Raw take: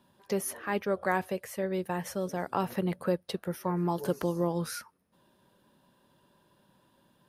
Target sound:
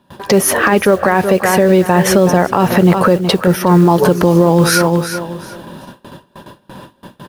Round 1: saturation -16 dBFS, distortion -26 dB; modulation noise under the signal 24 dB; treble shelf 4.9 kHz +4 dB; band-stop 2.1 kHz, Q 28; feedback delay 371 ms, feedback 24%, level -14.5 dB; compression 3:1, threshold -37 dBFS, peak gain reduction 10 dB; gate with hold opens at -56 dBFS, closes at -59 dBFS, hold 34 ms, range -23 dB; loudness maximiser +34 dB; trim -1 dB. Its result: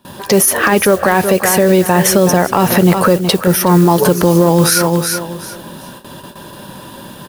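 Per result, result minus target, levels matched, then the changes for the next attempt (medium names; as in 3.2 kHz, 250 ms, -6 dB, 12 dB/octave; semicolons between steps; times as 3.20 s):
saturation: distortion +16 dB; 8 kHz band +5.0 dB
change: saturation -7.5 dBFS, distortion -41 dB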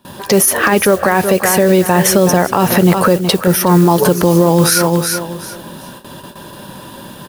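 8 kHz band +5.0 dB
change: treble shelf 4.9 kHz -8 dB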